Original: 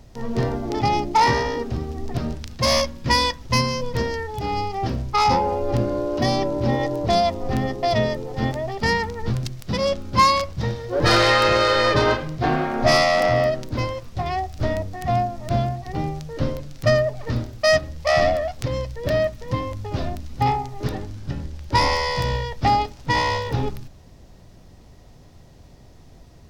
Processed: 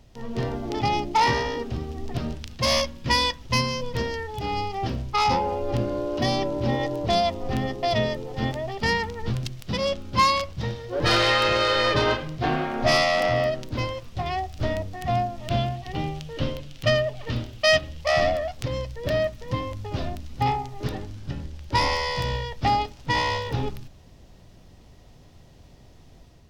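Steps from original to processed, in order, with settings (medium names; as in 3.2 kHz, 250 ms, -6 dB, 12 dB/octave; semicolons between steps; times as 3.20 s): level rider gain up to 3.5 dB; peaking EQ 3 kHz +6 dB 0.69 oct, from 15.38 s +13 dB, from 18.01 s +4.5 dB; trim -6.5 dB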